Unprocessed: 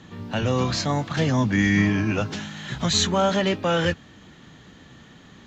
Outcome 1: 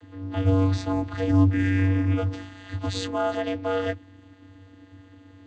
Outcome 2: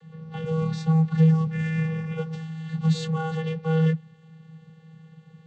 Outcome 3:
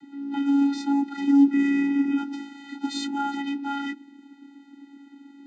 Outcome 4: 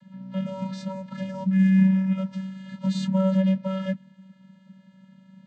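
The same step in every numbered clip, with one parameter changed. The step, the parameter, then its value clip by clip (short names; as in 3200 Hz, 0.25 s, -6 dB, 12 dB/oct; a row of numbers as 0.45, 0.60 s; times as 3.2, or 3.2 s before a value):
vocoder, frequency: 95, 160, 280, 190 Hz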